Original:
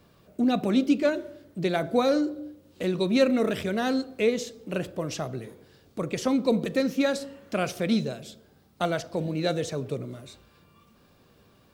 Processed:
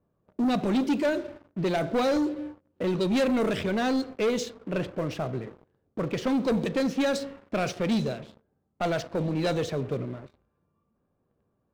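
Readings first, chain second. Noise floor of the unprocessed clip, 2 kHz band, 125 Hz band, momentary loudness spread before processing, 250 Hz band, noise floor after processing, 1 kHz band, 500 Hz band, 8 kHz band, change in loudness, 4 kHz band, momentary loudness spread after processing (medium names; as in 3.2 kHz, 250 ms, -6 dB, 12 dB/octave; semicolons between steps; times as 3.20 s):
-60 dBFS, -0.5 dB, +1.0 dB, 16 LU, -1.0 dB, -75 dBFS, +0.5 dB, -1.0 dB, -2.0 dB, -1.0 dB, -1.0 dB, 10 LU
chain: level-controlled noise filter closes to 1 kHz, open at -19.5 dBFS; waveshaping leveller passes 3; trim -8.5 dB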